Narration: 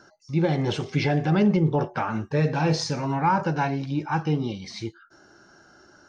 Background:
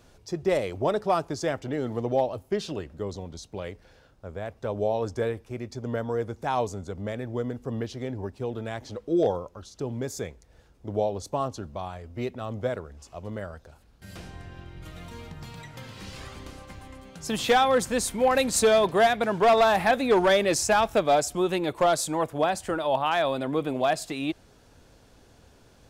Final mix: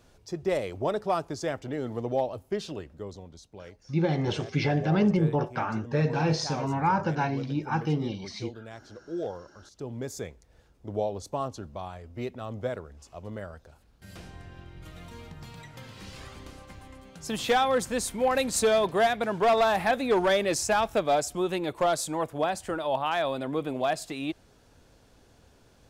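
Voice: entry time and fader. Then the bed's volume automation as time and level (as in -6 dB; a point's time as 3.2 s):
3.60 s, -3.0 dB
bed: 2.64 s -3 dB
3.55 s -10 dB
9.45 s -10 dB
10.07 s -3 dB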